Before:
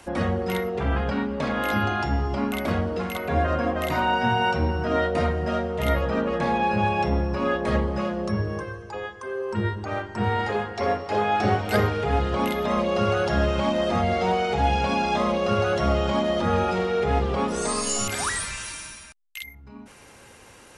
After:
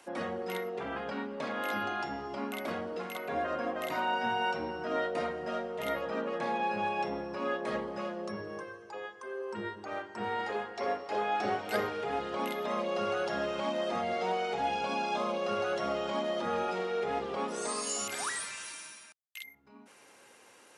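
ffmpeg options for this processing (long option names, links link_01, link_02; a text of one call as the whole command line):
ffmpeg -i in.wav -filter_complex "[0:a]asettb=1/sr,asplit=3[link_01][link_02][link_03];[link_01]atrim=end=14.764[link_04];[link_02]atrim=start=14.76:end=15.42,asetpts=PTS-STARTPTS,afade=type=in:duration=0.004:curve=qsin,afade=type=out:start_time=0.656:duration=0.004:curve=qsin,asuperstop=centerf=1900:order=4:qfactor=5.5[link_05];[link_03]atrim=start=15.416[link_06];[link_04][link_05]acrossfade=duration=0.004:curve1=hsin:curve2=qsin[link_07];[link_07][link_06]acrossfade=duration=0.004:curve1=qsin:curve2=hsin,highpass=280,volume=-8dB" out.wav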